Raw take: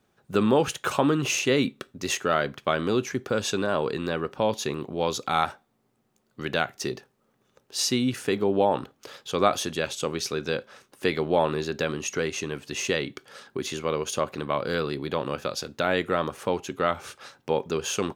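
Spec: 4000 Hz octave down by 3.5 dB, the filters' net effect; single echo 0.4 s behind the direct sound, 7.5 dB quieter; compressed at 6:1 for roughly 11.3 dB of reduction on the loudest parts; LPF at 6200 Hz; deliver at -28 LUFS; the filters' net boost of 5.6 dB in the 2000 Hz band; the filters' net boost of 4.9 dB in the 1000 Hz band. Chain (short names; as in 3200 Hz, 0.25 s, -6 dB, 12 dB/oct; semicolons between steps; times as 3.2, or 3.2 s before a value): LPF 6200 Hz; bell 1000 Hz +4.5 dB; bell 2000 Hz +8 dB; bell 4000 Hz -7.5 dB; compressor 6:1, threshold -25 dBFS; echo 0.4 s -7.5 dB; gain +3 dB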